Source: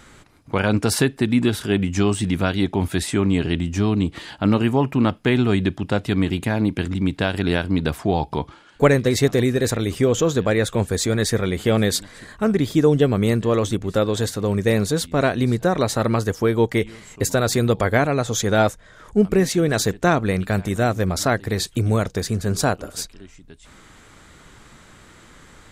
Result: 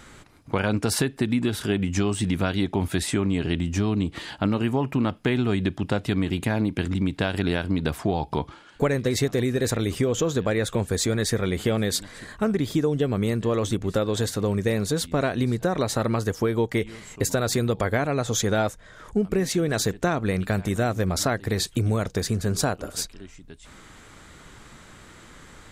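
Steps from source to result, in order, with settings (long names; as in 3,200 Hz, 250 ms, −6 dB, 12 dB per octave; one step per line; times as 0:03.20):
downward compressor 4 to 1, threshold −20 dBFS, peak gain reduction 9.5 dB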